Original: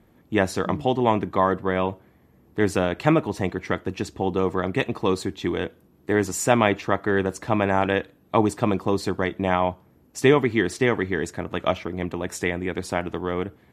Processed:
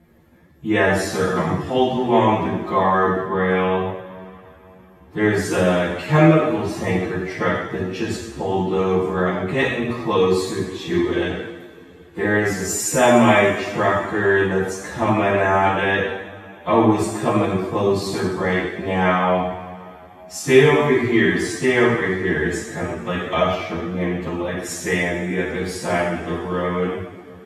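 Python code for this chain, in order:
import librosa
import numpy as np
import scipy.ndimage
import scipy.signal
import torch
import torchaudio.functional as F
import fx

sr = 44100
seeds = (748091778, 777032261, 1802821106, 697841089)

y = fx.rev_double_slope(x, sr, seeds[0], early_s=0.46, late_s=2.1, knee_db=-21, drr_db=-6.5)
y = fx.stretch_vocoder_free(y, sr, factor=2.0)
y = y * 10.0 ** (-1.0 / 20.0)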